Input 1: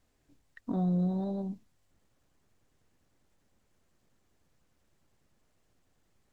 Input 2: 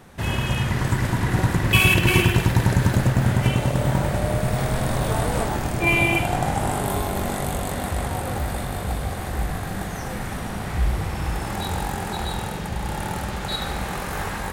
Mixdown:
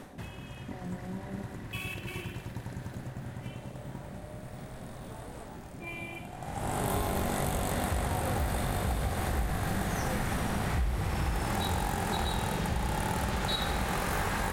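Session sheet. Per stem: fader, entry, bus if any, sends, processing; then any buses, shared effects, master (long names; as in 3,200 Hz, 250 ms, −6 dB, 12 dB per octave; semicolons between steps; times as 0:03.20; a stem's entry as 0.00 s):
−10.0 dB, 0.00 s, no send, compressor on every frequency bin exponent 0.2; phaser with staggered stages 4.3 Hz
+1.5 dB, 0.00 s, no send, automatic ducking −23 dB, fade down 0.30 s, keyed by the first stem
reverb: not used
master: downward compressor 6 to 1, threshold −27 dBFS, peak gain reduction 11.5 dB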